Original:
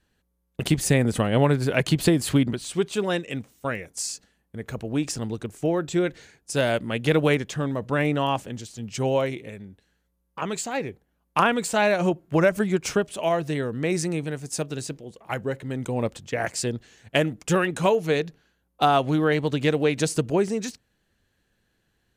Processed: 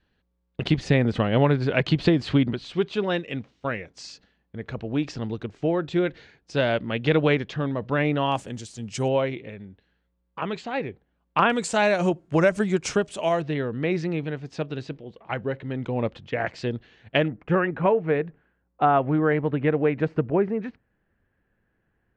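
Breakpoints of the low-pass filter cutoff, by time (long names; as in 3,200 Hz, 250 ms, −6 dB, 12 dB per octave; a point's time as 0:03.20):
low-pass filter 24 dB per octave
4,400 Hz
from 0:08.32 9,500 Hz
from 0:09.08 3,900 Hz
from 0:11.50 8,400 Hz
from 0:13.42 3,800 Hz
from 0:17.28 2,100 Hz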